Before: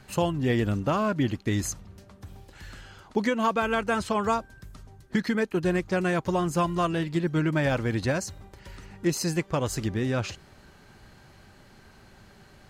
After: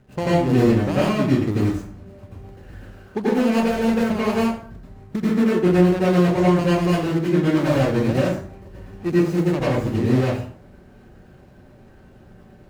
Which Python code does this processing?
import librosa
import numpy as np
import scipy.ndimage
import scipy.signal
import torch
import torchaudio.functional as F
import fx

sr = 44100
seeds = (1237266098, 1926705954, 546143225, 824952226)

y = scipy.signal.medfilt(x, 41)
y = fx.low_shelf(y, sr, hz=140.0, db=-5.5)
y = fx.rev_plate(y, sr, seeds[0], rt60_s=0.53, hf_ratio=0.7, predelay_ms=75, drr_db=-8.5)
y = y * librosa.db_to_amplitude(1.5)